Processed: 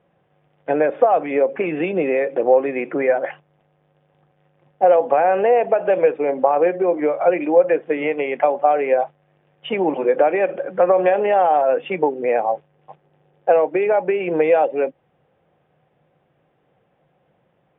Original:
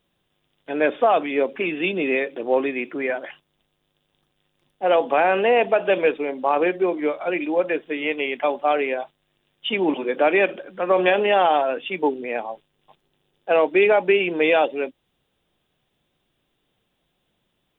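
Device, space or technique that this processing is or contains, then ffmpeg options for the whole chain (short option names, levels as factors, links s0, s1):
bass amplifier: -af "acompressor=threshold=0.0501:ratio=5,highpass=79,equalizer=f=150:t=q:w=4:g=8,equalizer=f=240:t=q:w=4:g=-3,equalizer=f=520:t=q:w=4:g=9,equalizer=f=760:t=q:w=4:g=7,lowpass=f=2200:w=0.5412,lowpass=f=2200:w=1.3066,volume=2.24"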